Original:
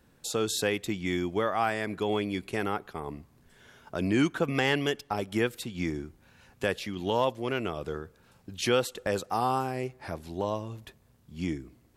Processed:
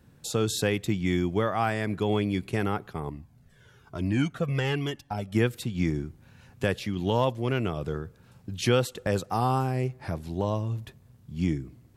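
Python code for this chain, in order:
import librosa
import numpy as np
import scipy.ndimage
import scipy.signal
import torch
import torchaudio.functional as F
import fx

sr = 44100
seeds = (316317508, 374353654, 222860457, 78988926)

y = fx.peak_eq(x, sr, hz=120.0, db=11.0, octaves=1.6)
y = fx.comb_cascade(y, sr, direction='falling', hz=1.1, at=(3.09, 5.35))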